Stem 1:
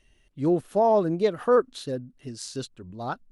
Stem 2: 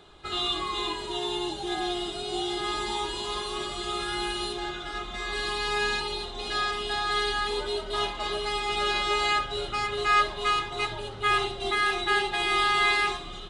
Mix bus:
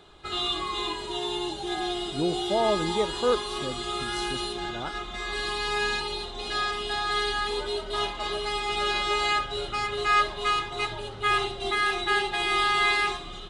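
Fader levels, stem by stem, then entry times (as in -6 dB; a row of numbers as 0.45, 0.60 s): -4.5, 0.0 dB; 1.75, 0.00 s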